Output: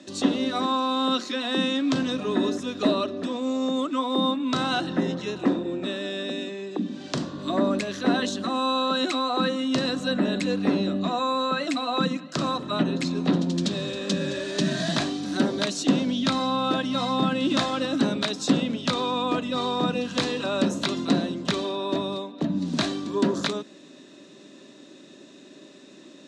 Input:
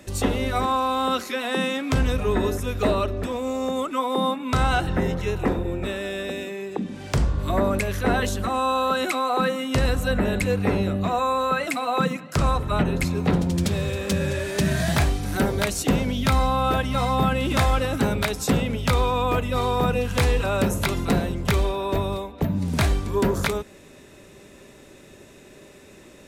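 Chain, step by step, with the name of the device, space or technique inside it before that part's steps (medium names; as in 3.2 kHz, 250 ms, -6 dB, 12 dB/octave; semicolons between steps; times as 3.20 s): television speaker (cabinet simulation 180–7000 Hz, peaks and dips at 290 Hz +7 dB, 450 Hz -7 dB, 840 Hz -7 dB, 1.4 kHz -4 dB, 2.2 kHz -9 dB, 3.9 kHz +6 dB)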